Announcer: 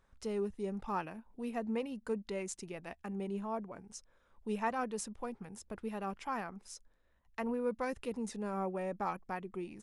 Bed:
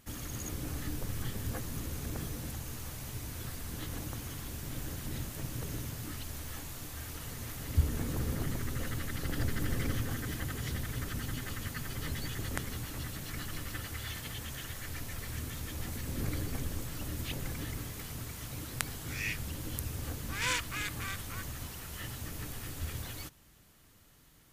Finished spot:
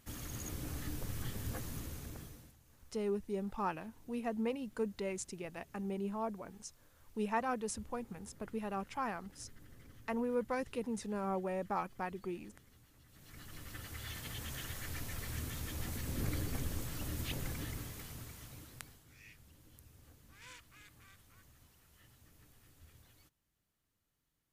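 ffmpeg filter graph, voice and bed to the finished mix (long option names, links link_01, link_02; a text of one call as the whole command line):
ffmpeg -i stem1.wav -i stem2.wav -filter_complex "[0:a]adelay=2700,volume=0dB[link_01];[1:a]volume=19dB,afade=type=out:start_time=1.68:duration=0.87:silence=0.0891251,afade=type=in:start_time=13.07:duration=1.48:silence=0.0707946,afade=type=out:start_time=17.4:duration=1.65:silence=0.0944061[link_02];[link_01][link_02]amix=inputs=2:normalize=0" out.wav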